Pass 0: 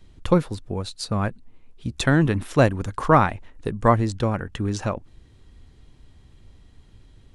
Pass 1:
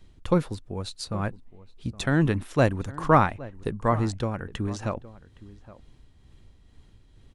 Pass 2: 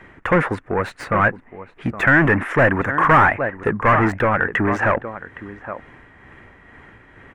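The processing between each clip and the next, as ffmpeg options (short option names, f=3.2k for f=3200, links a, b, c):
-filter_complex "[0:a]tremolo=f=2.2:d=0.41,asplit=2[a][b];[b]adelay=816.3,volume=-18dB,highshelf=f=4k:g=-18.4[c];[a][c]amix=inputs=2:normalize=0,volume=-2dB"
-filter_complex "[0:a]asplit=2[a][b];[b]highpass=f=720:p=1,volume=31dB,asoftclip=type=tanh:threshold=-5.5dB[c];[a][c]amix=inputs=2:normalize=0,lowpass=f=3.9k:p=1,volume=-6dB,highshelf=f=2.8k:t=q:w=3:g=-14,volume=-2.5dB"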